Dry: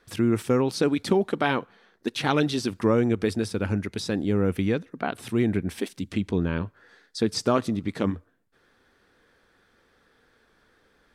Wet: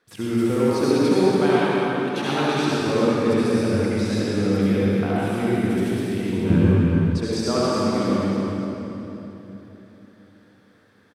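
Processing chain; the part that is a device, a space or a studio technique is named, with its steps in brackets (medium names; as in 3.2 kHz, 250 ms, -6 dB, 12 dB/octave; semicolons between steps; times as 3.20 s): cave (delay 279 ms -8.5 dB; reverberation RT60 3.4 s, pre-delay 62 ms, DRR -8.5 dB); high-pass 100 Hz; 6.50–7.18 s: bass shelf 240 Hz +11.5 dB; trim -5.5 dB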